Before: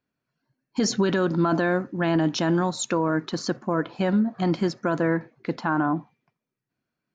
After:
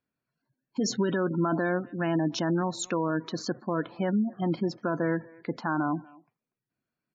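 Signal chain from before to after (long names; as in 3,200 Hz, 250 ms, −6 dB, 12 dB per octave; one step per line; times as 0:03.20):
far-end echo of a speakerphone 240 ms, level −21 dB
gate on every frequency bin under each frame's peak −25 dB strong
level −4.5 dB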